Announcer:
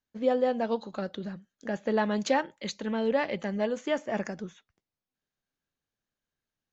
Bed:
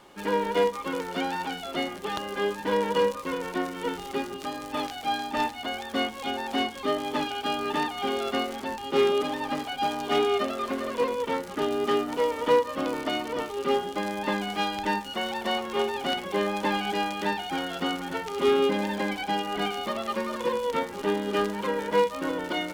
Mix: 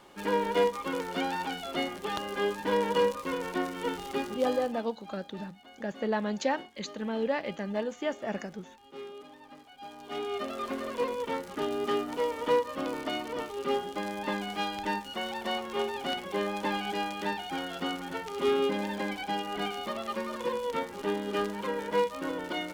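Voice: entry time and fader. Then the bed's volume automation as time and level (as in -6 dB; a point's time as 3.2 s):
4.15 s, -3.0 dB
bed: 4.6 s -2 dB
4.86 s -21 dB
9.7 s -21 dB
10.59 s -4.5 dB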